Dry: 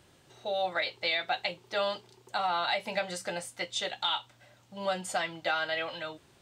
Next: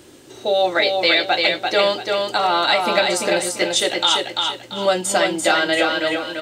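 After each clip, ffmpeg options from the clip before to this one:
ffmpeg -i in.wav -filter_complex "[0:a]firequalizer=gain_entry='entry(180,0);entry(280,14);entry(700,2);entry(6900,8)':delay=0.05:min_phase=1,asplit=2[link_01][link_02];[link_02]aecho=0:1:341|682|1023|1364:0.631|0.196|0.0606|0.0188[link_03];[link_01][link_03]amix=inputs=2:normalize=0,volume=8.5dB" out.wav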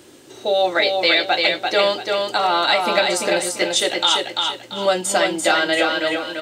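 ffmpeg -i in.wav -af "lowshelf=frequency=95:gain=-8.5" out.wav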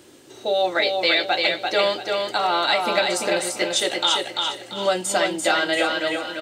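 ffmpeg -i in.wav -af "aecho=1:1:749|1498|2247:0.112|0.0494|0.0217,volume=-3dB" out.wav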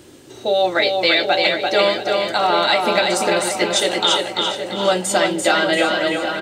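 ffmpeg -i in.wav -filter_complex "[0:a]lowshelf=frequency=180:gain=9.5,asplit=2[link_01][link_02];[link_02]adelay=770,lowpass=frequency=1700:poles=1,volume=-7dB,asplit=2[link_03][link_04];[link_04]adelay=770,lowpass=frequency=1700:poles=1,volume=0.54,asplit=2[link_05][link_06];[link_06]adelay=770,lowpass=frequency=1700:poles=1,volume=0.54,asplit=2[link_07][link_08];[link_08]adelay=770,lowpass=frequency=1700:poles=1,volume=0.54,asplit=2[link_09][link_10];[link_10]adelay=770,lowpass=frequency=1700:poles=1,volume=0.54,asplit=2[link_11][link_12];[link_12]adelay=770,lowpass=frequency=1700:poles=1,volume=0.54,asplit=2[link_13][link_14];[link_14]adelay=770,lowpass=frequency=1700:poles=1,volume=0.54[link_15];[link_01][link_03][link_05][link_07][link_09][link_11][link_13][link_15]amix=inputs=8:normalize=0,volume=3dB" out.wav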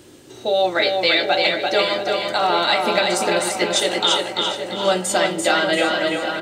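ffmpeg -i in.wav -af "bandreject=frequency=66.72:width_type=h:width=4,bandreject=frequency=133.44:width_type=h:width=4,bandreject=frequency=200.16:width_type=h:width=4,bandreject=frequency=266.88:width_type=h:width=4,bandreject=frequency=333.6:width_type=h:width=4,bandreject=frequency=400.32:width_type=h:width=4,bandreject=frequency=467.04:width_type=h:width=4,bandreject=frequency=533.76:width_type=h:width=4,bandreject=frequency=600.48:width_type=h:width=4,bandreject=frequency=667.2:width_type=h:width=4,bandreject=frequency=733.92:width_type=h:width=4,bandreject=frequency=800.64:width_type=h:width=4,bandreject=frequency=867.36:width_type=h:width=4,bandreject=frequency=934.08:width_type=h:width=4,bandreject=frequency=1000.8:width_type=h:width=4,bandreject=frequency=1067.52:width_type=h:width=4,bandreject=frequency=1134.24:width_type=h:width=4,bandreject=frequency=1200.96:width_type=h:width=4,bandreject=frequency=1267.68:width_type=h:width=4,bandreject=frequency=1334.4:width_type=h:width=4,bandreject=frequency=1401.12:width_type=h:width=4,bandreject=frequency=1467.84:width_type=h:width=4,bandreject=frequency=1534.56:width_type=h:width=4,bandreject=frequency=1601.28:width_type=h:width=4,bandreject=frequency=1668:width_type=h:width=4,bandreject=frequency=1734.72:width_type=h:width=4,bandreject=frequency=1801.44:width_type=h:width=4,bandreject=frequency=1868.16:width_type=h:width=4,bandreject=frequency=1934.88:width_type=h:width=4,bandreject=frequency=2001.6:width_type=h:width=4,bandreject=frequency=2068.32:width_type=h:width=4,bandreject=frequency=2135.04:width_type=h:width=4,bandreject=frequency=2201.76:width_type=h:width=4,bandreject=frequency=2268.48:width_type=h:width=4,bandreject=frequency=2335.2:width_type=h:width=4,bandreject=frequency=2401.92:width_type=h:width=4,bandreject=frequency=2468.64:width_type=h:width=4,volume=-1dB" out.wav

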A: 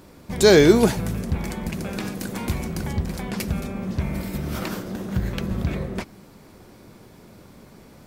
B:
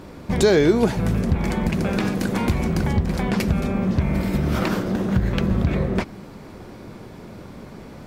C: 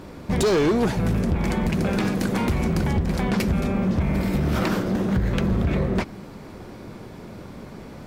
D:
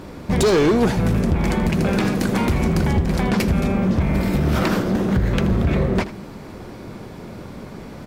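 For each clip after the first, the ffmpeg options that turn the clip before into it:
ffmpeg -i in.wav -af "acompressor=threshold=-25dB:ratio=3,lowpass=frequency=3100:poles=1,volume=8.5dB" out.wav
ffmpeg -i in.wav -af "asoftclip=type=hard:threshold=-16.5dB" out.wav
ffmpeg -i in.wav -af "aecho=1:1:80:0.178,volume=3.5dB" out.wav

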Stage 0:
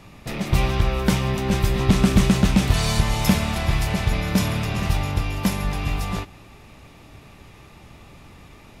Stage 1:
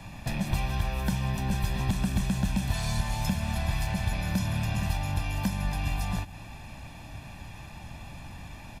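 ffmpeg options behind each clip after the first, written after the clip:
ffmpeg -i in.wav -filter_complex "[0:a]aecho=1:1:1.2:0.69,acrossover=split=210|8000[link_01][link_02][link_03];[link_01]acompressor=threshold=-28dB:ratio=4[link_04];[link_02]acompressor=threshold=-36dB:ratio=4[link_05];[link_03]acompressor=threshold=-48dB:ratio=4[link_06];[link_04][link_05][link_06]amix=inputs=3:normalize=0" out.wav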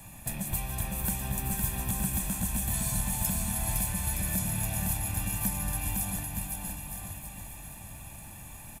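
ffmpeg -i in.wav -af "aexciter=amount=9.6:drive=4.6:freq=7300,aecho=1:1:510|918|1244|1506|1714:0.631|0.398|0.251|0.158|0.1,volume=-6.5dB" out.wav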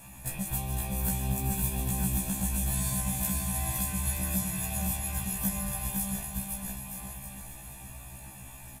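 ffmpeg -i in.wav -af "afftfilt=real='re*1.73*eq(mod(b,3),0)':imag='im*1.73*eq(mod(b,3),0)':win_size=2048:overlap=0.75,volume=2dB" out.wav

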